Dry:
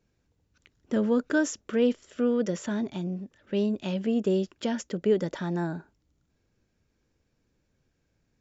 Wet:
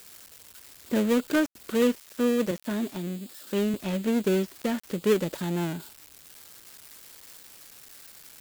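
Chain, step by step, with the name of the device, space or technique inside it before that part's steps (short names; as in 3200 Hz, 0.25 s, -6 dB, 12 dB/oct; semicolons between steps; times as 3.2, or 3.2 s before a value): 2.51–3.74 Chebyshev band-pass 210–6300 Hz, order 2; budget class-D amplifier (switching dead time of 0.25 ms; switching spikes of -29.5 dBFS); gain +1 dB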